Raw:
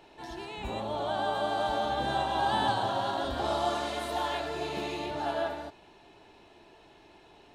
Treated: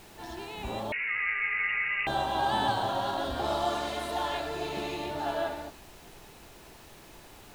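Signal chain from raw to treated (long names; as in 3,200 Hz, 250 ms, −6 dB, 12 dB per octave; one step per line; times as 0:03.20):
background noise pink −52 dBFS
0:00.92–0:02.07: voice inversion scrambler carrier 2,800 Hz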